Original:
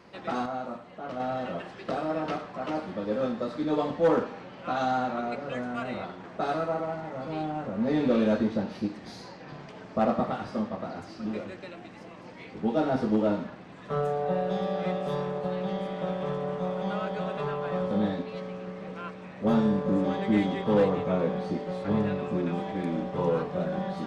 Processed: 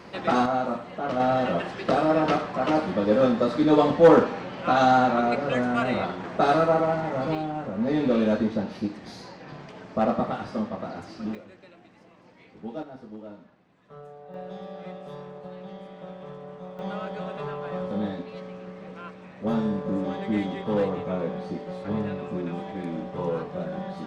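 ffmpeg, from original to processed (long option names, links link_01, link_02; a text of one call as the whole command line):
ffmpeg -i in.wav -af "asetnsamples=nb_out_samples=441:pad=0,asendcmd='7.35 volume volume 1.5dB;11.35 volume volume -9dB;12.83 volume volume -16.5dB;14.34 volume volume -9.5dB;16.79 volume volume -2dB',volume=8.5dB" out.wav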